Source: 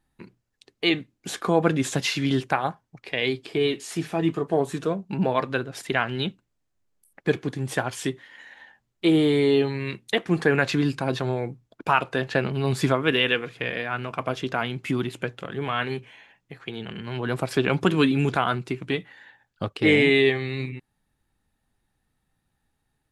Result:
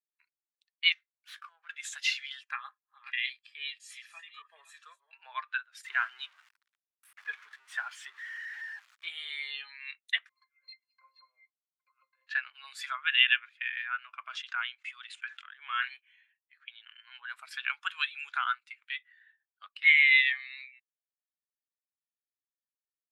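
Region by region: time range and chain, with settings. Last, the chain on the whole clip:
0.92–1.69 compressor 12:1, threshold -28 dBFS + running maximum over 5 samples
2.41–5.19 reverse delay 0.402 s, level -10.5 dB + notch comb 730 Hz + dynamic EQ 900 Hz, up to -7 dB, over -47 dBFS, Q 6.9
5.84–9.08 zero-crossing step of -27.5 dBFS + tilt -3.5 dB/oct
10.29–12.27 high shelf 5300 Hz +10 dB + negative-ratio compressor -26 dBFS, ratio -0.5 + octave resonator C, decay 0.13 s
14.28–15.92 brick-wall FIR low-pass 10000 Hz + low shelf 180 Hz -10 dB + sustainer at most 72 dB/s
whole clip: HPF 1300 Hz 24 dB/oct; spectral expander 1.5:1

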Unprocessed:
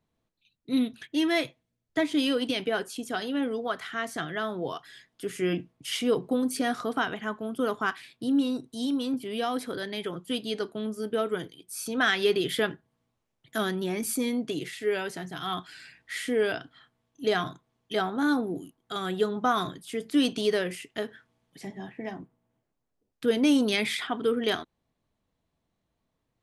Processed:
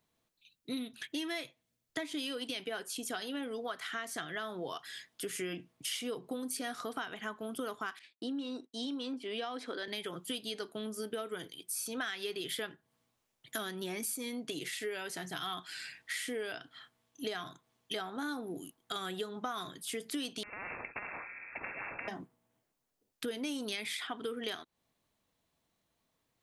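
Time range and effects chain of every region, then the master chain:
7.99–9.88 HPF 230 Hz 24 dB/oct + expander -44 dBFS + air absorption 110 m
20.43–22.08 compressor 12:1, threshold -32 dBFS + inverted band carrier 2500 Hz + spectral compressor 10:1
whole clip: tilt +2 dB/oct; compressor 6:1, threshold -37 dBFS; gain +1 dB

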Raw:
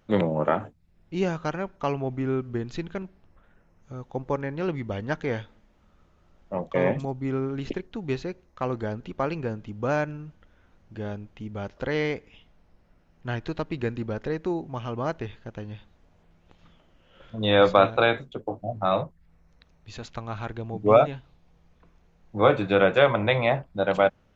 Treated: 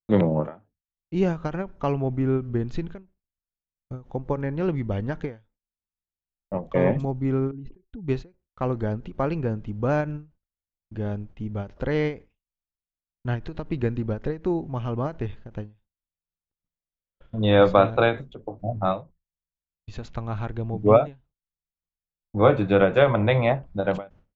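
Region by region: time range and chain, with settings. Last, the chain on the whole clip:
7.51–8.08 spectral contrast raised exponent 1.7 + compressor 16:1, threshold -38 dBFS
whole clip: gate -48 dBFS, range -48 dB; tilt -2 dB/oct; ending taper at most 200 dB/s

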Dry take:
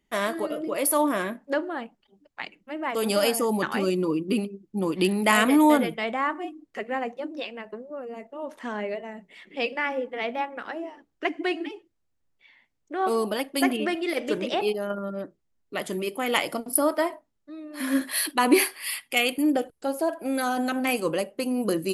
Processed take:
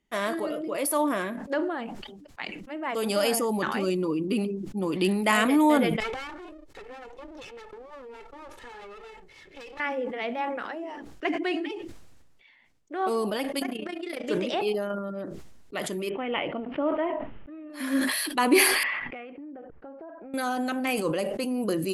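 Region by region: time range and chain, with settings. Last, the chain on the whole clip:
6–9.8 minimum comb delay 2.3 ms + compressor 10:1, threshold -37 dBFS
13.59–14.24 AM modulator 29 Hz, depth 70% + compressor, threshold -27 dBFS
16.09–17.7 block floating point 5-bit + Chebyshev low-pass 3000 Hz, order 5 + dynamic EQ 1600 Hz, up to -6 dB, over -39 dBFS, Q 1
18.83–20.34 LPF 1900 Hz 24 dB/oct + compressor 8:1, threshold -38 dBFS
whole clip: Bessel low-pass 11000 Hz; sustainer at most 36 dB/s; gain -2.5 dB

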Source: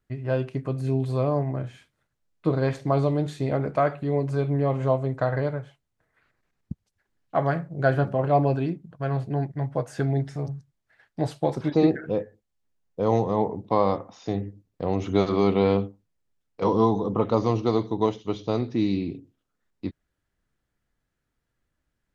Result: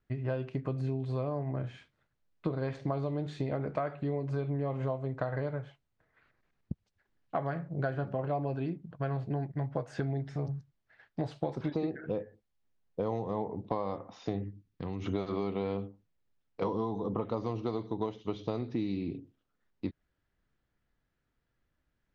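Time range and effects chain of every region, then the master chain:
14.44–15.06 bell 600 Hz -15 dB 0.92 oct + compressor, threshold -31 dBFS
whole clip: LPF 4600 Hz 12 dB/oct; compressor 10:1, threshold -28 dBFS; gain -1 dB

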